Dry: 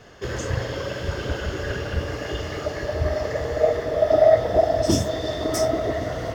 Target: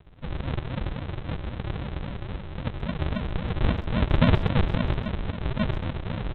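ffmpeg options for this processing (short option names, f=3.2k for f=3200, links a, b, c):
-filter_complex "[0:a]equalizer=f=510:w=5.2:g=14,aresample=8000,acrusher=samples=27:mix=1:aa=0.000001:lfo=1:lforange=16.2:lforate=3.7,aresample=44100,asplit=2[a][b];[b]adelay=130,highpass=300,lowpass=3.4k,asoftclip=type=hard:threshold=-11.5dB,volume=-15dB[c];[a][c]amix=inputs=2:normalize=0,volume=-7dB"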